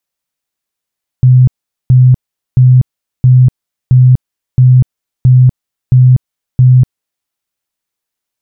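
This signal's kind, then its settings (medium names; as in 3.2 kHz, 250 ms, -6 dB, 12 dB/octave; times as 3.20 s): tone bursts 127 Hz, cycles 31, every 0.67 s, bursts 9, -1.5 dBFS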